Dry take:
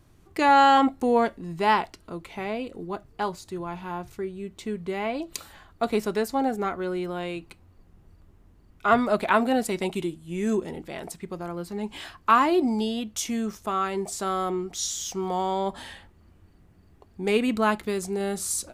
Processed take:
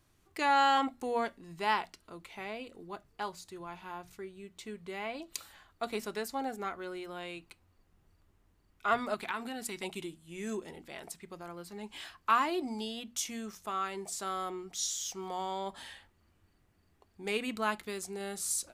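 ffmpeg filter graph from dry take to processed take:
-filter_complex "[0:a]asettb=1/sr,asplit=3[a][b][c];[a]atrim=end=9.144[d];[b]atrim=start=9.14:end=9.83,asetpts=PTS-STARTPTS,afade=t=in:d=0.004:c=qsin,afade=t=out:st=0.686:d=0.004:c=qsin,equalizer=f=600:t=o:w=0.36:g=-14,acompressor=threshold=-24dB:ratio=4:attack=3.2:release=140:knee=1:detection=peak[e];[c]atrim=start=9.826[f];[d][e]acrossfade=d=0.004:c1=hsin:c2=qsin[g];[g][f]acrossfade=d=0.004:c1=qsin:c2=hsin,tiltshelf=f=890:g=-4.5,bandreject=f=60:t=h:w=6,bandreject=f=120:t=h:w=6,bandreject=f=180:t=h:w=6,bandreject=f=240:t=h:w=6,volume=-9dB"

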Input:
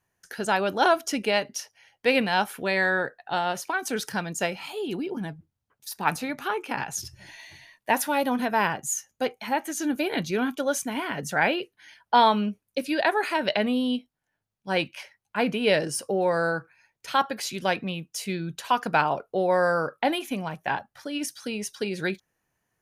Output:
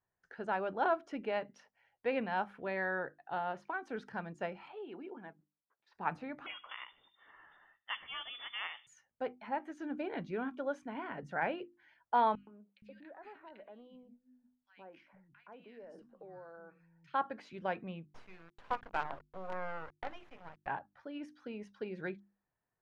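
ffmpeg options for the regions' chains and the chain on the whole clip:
-filter_complex "[0:a]asettb=1/sr,asplit=3[a][b][c];[a]atrim=end=4.684[d];[b]atrim=start=4.68:end=5.95,asetpts=PTS-STARTPTS,afade=t=in:d=0.004:c=qsin,afade=t=out:st=1.266:d=0.004:c=qsin,highpass=270,lowpass=3k,tiltshelf=f=850:g=-3.5[e];[c]atrim=start=5.946[f];[d][e]acrossfade=d=0.004:c1=hsin:c2=qsin[g];[g][f]acrossfade=d=0.004:c1=qsin:c2=hsin,asettb=1/sr,asplit=3[h][i][j];[h]atrim=end=6.464[k];[i]atrim=start=6.46:end=8.87,asetpts=PTS-STARTPTS,afade=t=in:d=0.004:c=qsin,afade=t=out:st=2.406:d=0.004:c=qsin,asplit=2[l][m];[m]adelay=74,lowpass=f=1.4k:p=1,volume=-16dB,asplit=2[n][o];[o]adelay=74,lowpass=f=1.4k:p=1,volume=0.54,asplit=2[p][q];[q]adelay=74,lowpass=f=1.4k:p=1,volume=0.54,asplit=2[r][s];[s]adelay=74,lowpass=f=1.4k:p=1,volume=0.54,asplit=2[t][u];[u]adelay=74,lowpass=f=1.4k:p=1,volume=0.54[v];[l][n][p][r][t][v]amix=inputs=6:normalize=0,atrim=end_sample=106281,lowpass=f=3.1k:t=q:w=0.5098,lowpass=f=3.1k:t=q:w=0.6013,lowpass=f=3.1k:t=q:w=0.9,lowpass=f=3.1k:t=q:w=2.563,afreqshift=-3700[w];[j]atrim=start=8.866[x];[k][w]acrossfade=d=0.004:c1=hsin:c2=qsin[y];[y][x]acrossfade=d=0.004:c1=qsin:c2=hsin,asettb=1/sr,asplit=3[z][aa][ab];[z]atrim=end=12.354[ac];[aa]atrim=start=12.35:end=17.14,asetpts=PTS-STARTPTS,afade=t=in:d=0.004:c=qsin,afade=t=out:st=4.786:d=0.004:c=qsin,acompressor=threshold=-40dB:ratio=4:attack=3.2:release=140:knee=1:detection=peak,acrossover=split=200|1600[ad][ae][af];[ae]adelay=120[ag];[ad]adelay=470[ah];[ah][ag][af]amix=inputs=3:normalize=0,atrim=end_sample=211239[ai];[ab]atrim=start=17.136[aj];[ac][ai]acrossfade=d=0.004:c1=hsin:c2=qsin[ak];[ak][aj]acrossfade=d=0.004:c1=qsin:c2=hsin,asettb=1/sr,asplit=3[al][am][an];[al]atrim=end=18.054[ao];[am]atrim=start=18.05:end=20.67,asetpts=PTS-STARTPTS,afade=t=in:d=0.004:c=qsin,afade=t=out:st=2.616:d=0.004:c=qsin,equalizer=f=200:t=o:w=2.3:g=-15,bandreject=f=50:t=h:w=6,bandreject=f=100:t=h:w=6,bandreject=f=150:t=h:w=6,bandreject=f=200:t=h:w=6,bandreject=f=250:t=h:w=6,bandreject=f=300:t=h:w=6,bandreject=f=350:t=h:w=6,bandreject=f=400:t=h:w=6,bandreject=f=450:t=h:w=6,bandreject=f=500:t=h:w=6,acrusher=bits=4:dc=4:mix=0:aa=0.000001[ap];[an]atrim=start=20.666[aq];[ao][ap]acrossfade=d=0.004:c1=hsin:c2=qsin[ar];[ar][aq]acrossfade=d=0.004:c1=qsin:c2=hsin,lowpass=1.5k,equalizer=f=180:w=0.3:g=-3,bandreject=f=50:t=h:w=6,bandreject=f=100:t=h:w=6,bandreject=f=150:t=h:w=6,bandreject=f=200:t=h:w=6,bandreject=f=250:t=h:w=6,bandreject=f=300:t=h:w=6,bandreject=f=350:t=h:w=6,volume=-8.5dB"

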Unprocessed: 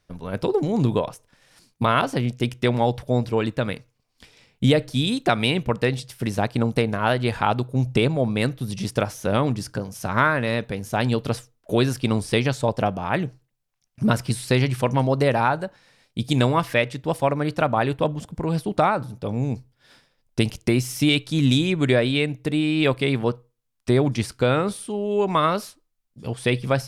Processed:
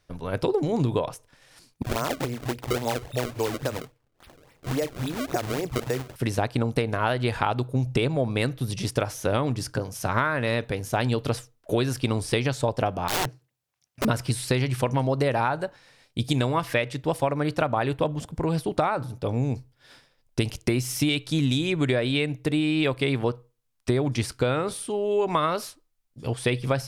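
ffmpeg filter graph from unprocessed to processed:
-filter_complex "[0:a]asettb=1/sr,asplit=3[a][b][c];[a]atrim=end=1.824[d];[b]atrim=start=1.82:end=6.16,asetpts=PTS-STARTPTS,afade=t=in:d=0.004:c=qsin,afade=t=out:st=4.336:d=0.004:c=qsin,acrossover=split=160|2800[e][f][g];[e]adelay=40[h];[f]adelay=70[i];[h][i][g]amix=inputs=3:normalize=0,atrim=end_sample=191394,acrossover=split=400|930[j][k][l];[j]acompressor=threshold=-31dB:ratio=4[m];[k]acompressor=threshold=-29dB:ratio=4[n];[l]acompressor=threshold=-38dB:ratio=4[o];[m][n][o]amix=inputs=3:normalize=0,acrusher=samples=29:mix=1:aa=0.000001:lfo=1:lforange=46.4:lforate=3.6[p];[c]atrim=start=6.156[q];[d][p]acrossfade=d=0.004:c1=hsin:c2=qsin[r];[r][q]acrossfade=d=0.004:c1=qsin:c2=hsin,asettb=1/sr,asplit=3[s][t][u];[s]atrim=end=13.084[v];[t]atrim=start=13.08:end=14.05,asetpts=PTS-STARTPTS,afade=t=in:d=0.004:c=qsin,afade=t=out:st=0.966:d=0.004:c=qsin,highpass=90,aeval=exprs='(mod(11.9*val(0)+1,2)-1)/11.9':c=same[w];[u]atrim=start=14.046[x];[v][w]acrossfade=d=0.004:c1=hsin:c2=qsin[y];[y][x]acrossfade=d=0.004:c1=qsin:c2=hsin,equalizer=f=200:w=5.6:g=-10,acompressor=threshold=-21dB:ratio=6,volume=1.5dB"

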